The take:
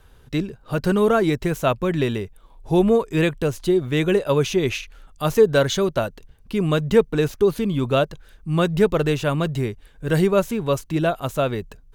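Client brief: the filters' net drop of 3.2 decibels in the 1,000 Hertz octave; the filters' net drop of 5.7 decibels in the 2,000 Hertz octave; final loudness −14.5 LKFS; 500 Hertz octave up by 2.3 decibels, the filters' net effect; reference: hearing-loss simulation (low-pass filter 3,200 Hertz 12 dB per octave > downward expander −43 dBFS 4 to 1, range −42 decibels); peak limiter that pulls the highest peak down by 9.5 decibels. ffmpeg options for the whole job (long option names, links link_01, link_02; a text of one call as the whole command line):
ffmpeg -i in.wav -af "equalizer=frequency=500:width_type=o:gain=4,equalizer=frequency=1000:width_type=o:gain=-5,equalizer=frequency=2000:width_type=o:gain=-5.5,alimiter=limit=-12dB:level=0:latency=1,lowpass=3200,agate=range=-42dB:threshold=-43dB:ratio=4,volume=8.5dB" out.wav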